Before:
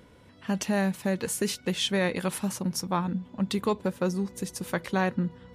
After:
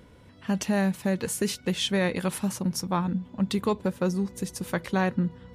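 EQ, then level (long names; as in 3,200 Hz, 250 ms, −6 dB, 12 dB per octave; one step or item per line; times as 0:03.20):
low-shelf EQ 150 Hz +5.5 dB
0.0 dB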